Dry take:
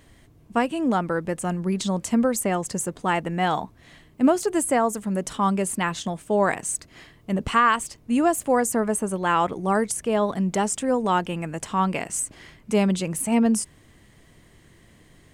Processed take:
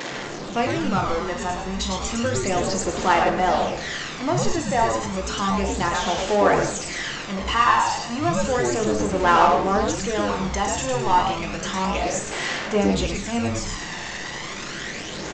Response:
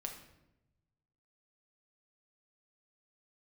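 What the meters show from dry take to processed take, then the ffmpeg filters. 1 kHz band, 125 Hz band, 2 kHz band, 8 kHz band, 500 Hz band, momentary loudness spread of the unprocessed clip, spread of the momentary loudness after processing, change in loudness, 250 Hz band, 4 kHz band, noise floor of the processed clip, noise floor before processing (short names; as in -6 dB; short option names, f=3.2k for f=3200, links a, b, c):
+4.0 dB, +2.0 dB, +4.0 dB, -0.5 dB, +2.0 dB, 8 LU, 11 LU, +1.0 dB, -2.5 dB, +8.0 dB, -33 dBFS, -55 dBFS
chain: -filter_complex "[0:a]aeval=exprs='val(0)+0.5*0.075*sgn(val(0))':c=same,highpass=350,asplit=6[a][b][c][d][e][f];[b]adelay=107,afreqshift=-130,volume=-4dB[g];[c]adelay=214,afreqshift=-260,volume=-12dB[h];[d]adelay=321,afreqshift=-390,volume=-19.9dB[i];[e]adelay=428,afreqshift=-520,volume=-27.9dB[j];[f]adelay=535,afreqshift=-650,volume=-35.8dB[k];[a][g][h][i][j][k]amix=inputs=6:normalize=0[l];[1:a]atrim=start_sample=2205,atrim=end_sample=4410[m];[l][m]afir=irnorm=-1:irlink=0,aphaser=in_gain=1:out_gain=1:delay=1.1:decay=0.41:speed=0.32:type=sinusoidal,aresample=16000,aresample=44100"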